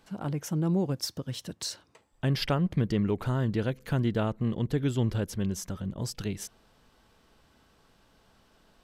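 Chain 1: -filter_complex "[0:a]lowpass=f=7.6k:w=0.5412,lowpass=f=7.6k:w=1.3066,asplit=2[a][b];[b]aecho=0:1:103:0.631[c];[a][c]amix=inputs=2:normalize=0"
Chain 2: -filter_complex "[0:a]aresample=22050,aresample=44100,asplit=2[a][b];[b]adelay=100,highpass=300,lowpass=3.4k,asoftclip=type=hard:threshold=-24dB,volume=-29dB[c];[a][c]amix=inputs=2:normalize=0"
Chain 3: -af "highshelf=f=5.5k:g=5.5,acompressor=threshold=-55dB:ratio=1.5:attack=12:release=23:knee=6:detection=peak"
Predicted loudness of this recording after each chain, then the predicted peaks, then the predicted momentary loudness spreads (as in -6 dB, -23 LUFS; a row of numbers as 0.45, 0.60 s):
-29.0, -30.5, -39.5 LUFS; -12.5, -14.5, -25.0 dBFS; 9, 9, 6 LU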